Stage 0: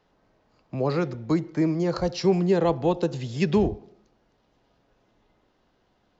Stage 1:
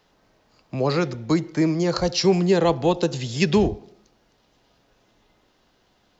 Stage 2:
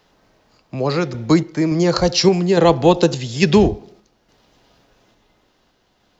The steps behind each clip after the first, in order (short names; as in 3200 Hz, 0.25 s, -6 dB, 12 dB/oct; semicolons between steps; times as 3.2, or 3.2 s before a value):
high shelf 2500 Hz +10 dB; gain +2.5 dB
random-step tremolo; gain +7.5 dB